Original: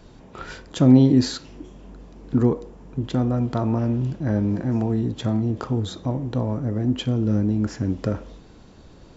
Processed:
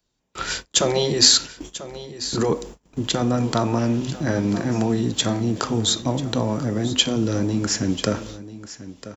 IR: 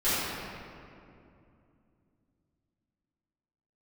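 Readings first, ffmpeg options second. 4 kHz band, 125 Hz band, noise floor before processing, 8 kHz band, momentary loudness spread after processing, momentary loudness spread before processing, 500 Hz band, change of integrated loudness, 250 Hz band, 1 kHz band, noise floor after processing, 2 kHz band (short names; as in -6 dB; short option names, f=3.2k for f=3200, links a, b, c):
+16.0 dB, -3.5 dB, -47 dBFS, n/a, 15 LU, 14 LU, +3.5 dB, +1.0 dB, -2.5 dB, +6.0 dB, -68 dBFS, +9.5 dB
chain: -filter_complex "[0:a]agate=range=-33dB:threshold=-39dB:ratio=16:detection=peak,afftfilt=real='re*lt(hypot(re,im),0.891)':imag='im*lt(hypot(re,im),0.891)':win_size=1024:overlap=0.75,acrossover=split=120|2000[a][b][c];[a]acompressor=threshold=-40dB:ratio=6[d];[d][b][c]amix=inputs=3:normalize=0,crystalizer=i=7.5:c=0,aecho=1:1:991:0.178,volume=2.5dB"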